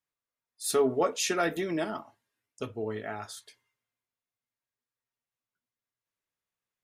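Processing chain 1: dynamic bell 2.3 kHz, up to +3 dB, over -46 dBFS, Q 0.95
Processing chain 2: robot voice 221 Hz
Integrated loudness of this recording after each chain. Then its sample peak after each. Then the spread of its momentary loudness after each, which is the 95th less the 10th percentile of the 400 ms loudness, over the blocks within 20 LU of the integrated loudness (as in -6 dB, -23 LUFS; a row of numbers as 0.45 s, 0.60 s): -30.0 LUFS, -32.5 LUFS; -14.0 dBFS, -13.0 dBFS; 15 LU, 15 LU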